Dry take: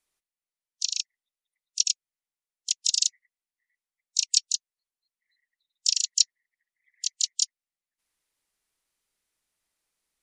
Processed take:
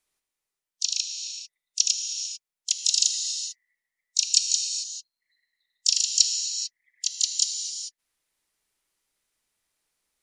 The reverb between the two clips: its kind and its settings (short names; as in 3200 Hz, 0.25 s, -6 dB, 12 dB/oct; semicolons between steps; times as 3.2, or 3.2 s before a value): non-linear reverb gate 0.47 s flat, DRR 3.5 dB; gain +1.5 dB